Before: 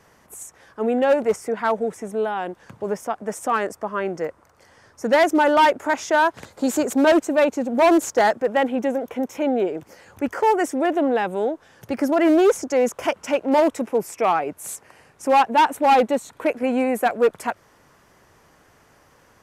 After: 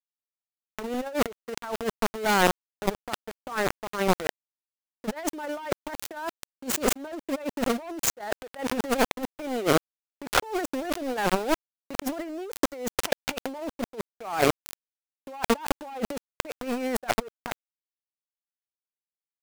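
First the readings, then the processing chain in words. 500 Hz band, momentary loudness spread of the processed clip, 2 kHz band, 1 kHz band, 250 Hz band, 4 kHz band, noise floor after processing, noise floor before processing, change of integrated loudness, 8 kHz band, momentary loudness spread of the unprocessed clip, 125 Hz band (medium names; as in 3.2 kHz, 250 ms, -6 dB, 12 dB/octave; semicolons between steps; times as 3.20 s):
-10.0 dB, 12 LU, -5.5 dB, -10.0 dB, -8.5 dB, -0.5 dB, under -85 dBFS, -57 dBFS, -8.5 dB, 0.0 dB, 13 LU, no reading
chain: small samples zeroed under -24.5 dBFS; transient shaper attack +11 dB, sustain -2 dB; compressor with a negative ratio -31 dBFS, ratio -1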